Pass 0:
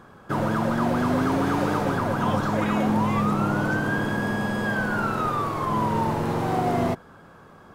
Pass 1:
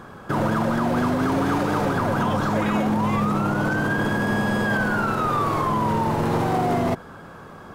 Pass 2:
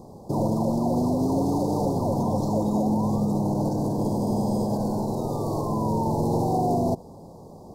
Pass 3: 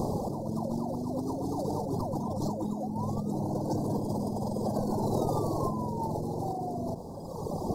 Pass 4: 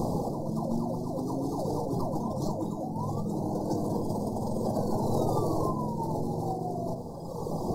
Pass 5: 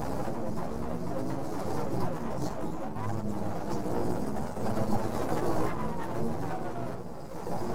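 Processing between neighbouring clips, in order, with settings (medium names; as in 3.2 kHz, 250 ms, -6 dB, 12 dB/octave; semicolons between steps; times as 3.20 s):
peak limiter -21.5 dBFS, peak gain reduction 10.5 dB; trim +7.5 dB
inverse Chebyshev band-stop 1.3–3.1 kHz, stop band 40 dB; trim -1 dB
reverb removal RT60 1.2 s; compressor with a negative ratio -37 dBFS, ratio -1; trim +5.5 dB
simulated room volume 200 m³, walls furnished, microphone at 0.71 m
half-wave rectifier; chorus voices 2, 0.62 Hz, delay 13 ms, depth 4.2 ms; trim +5 dB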